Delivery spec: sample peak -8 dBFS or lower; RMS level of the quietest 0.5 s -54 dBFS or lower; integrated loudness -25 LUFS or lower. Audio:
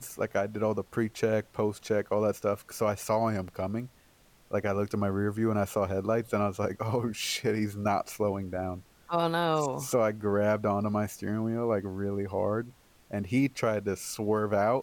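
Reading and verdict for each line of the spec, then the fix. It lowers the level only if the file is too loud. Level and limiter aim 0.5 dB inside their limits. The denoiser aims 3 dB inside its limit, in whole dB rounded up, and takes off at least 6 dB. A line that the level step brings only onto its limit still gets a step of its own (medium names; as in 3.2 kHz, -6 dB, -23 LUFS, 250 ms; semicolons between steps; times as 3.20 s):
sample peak -15.5 dBFS: pass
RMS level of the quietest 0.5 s -61 dBFS: pass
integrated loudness -30.0 LUFS: pass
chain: none needed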